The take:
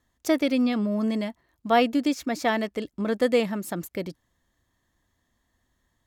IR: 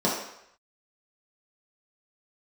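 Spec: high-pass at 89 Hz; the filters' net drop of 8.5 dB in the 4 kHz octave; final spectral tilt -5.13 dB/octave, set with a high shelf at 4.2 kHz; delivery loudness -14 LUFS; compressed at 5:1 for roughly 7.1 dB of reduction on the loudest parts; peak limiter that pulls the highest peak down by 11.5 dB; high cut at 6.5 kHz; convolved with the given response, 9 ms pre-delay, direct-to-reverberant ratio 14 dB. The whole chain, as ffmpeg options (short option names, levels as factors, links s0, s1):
-filter_complex "[0:a]highpass=89,lowpass=6500,equalizer=f=4000:t=o:g=-8,highshelf=f=4200:g=-6.5,acompressor=threshold=0.0631:ratio=5,alimiter=level_in=1.26:limit=0.0631:level=0:latency=1,volume=0.794,asplit=2[s0][s1];[1:a]atrim=start_sample=2205,adelay=9[s2];[s1][s2]afir=irnorm=-1:irlink=0,volume=0.0398[s3];[s0][s3]amix=inputs=2:normalize=0,volume=10.6"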